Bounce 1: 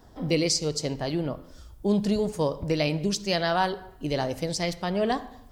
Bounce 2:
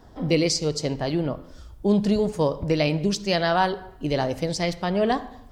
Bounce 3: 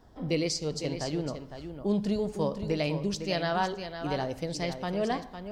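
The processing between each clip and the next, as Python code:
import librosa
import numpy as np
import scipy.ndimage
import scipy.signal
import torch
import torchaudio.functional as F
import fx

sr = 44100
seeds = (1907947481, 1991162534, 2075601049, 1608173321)

y1 = fx.high_shelf(x, sr, hz=6400.0, db=-8.0)
y1 = y1 * librosa.db_to_amplitude(3.5)
y2 = y1 + 10.0 ** (-9.0 / 20.0) * np.pad(y1, (int(506 * sr / 1000.0), 0))[:len(y1)]
y2 = y2 * librosa.db_to_amplitude(-7.5)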